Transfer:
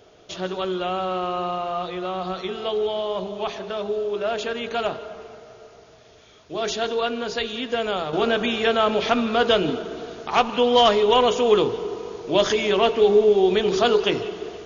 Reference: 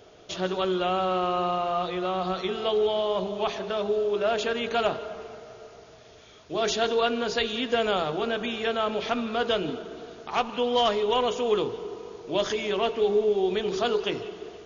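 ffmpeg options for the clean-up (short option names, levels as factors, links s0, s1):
-af "asetnsamples=n=441:p=0,asendcmd='8.13 volume volume -7dB',volume=1"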